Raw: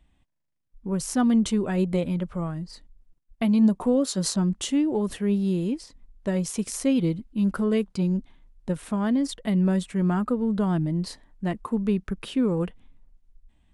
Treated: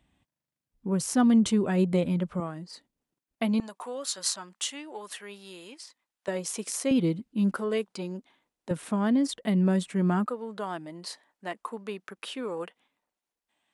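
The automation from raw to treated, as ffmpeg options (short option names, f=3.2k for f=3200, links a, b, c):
-af "asetnsamples=n=441:p=0,asendcmd='2.4 highpass f 260;3.6 highpass f 1000;6.28 highpass f 390;6.91 highpass f 170;7.56 highpass f 400;8.71 highpass f 160;10.26 highpass f 590',highpass=94"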